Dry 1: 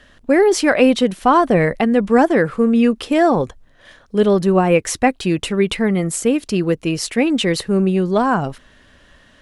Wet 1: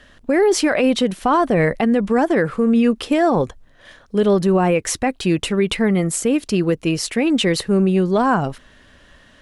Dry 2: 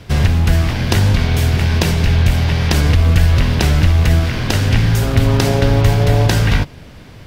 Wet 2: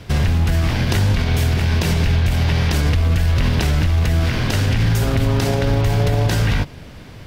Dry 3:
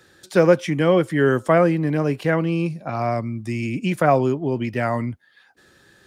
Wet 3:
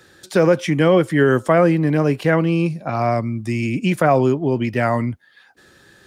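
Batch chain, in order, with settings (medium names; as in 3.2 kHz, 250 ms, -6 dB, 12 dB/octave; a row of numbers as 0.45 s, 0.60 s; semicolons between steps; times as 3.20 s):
peak limiter -9 dBFS; normalise loudness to -18 LUFS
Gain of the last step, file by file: +0.5 dB, 0.0 dB, +4.0 dB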